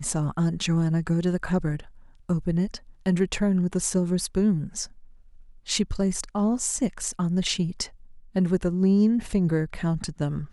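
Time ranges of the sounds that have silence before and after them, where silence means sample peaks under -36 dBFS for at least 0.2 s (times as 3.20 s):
2.29–2.77 s
3.06–4.86 s
5.68–7.86 s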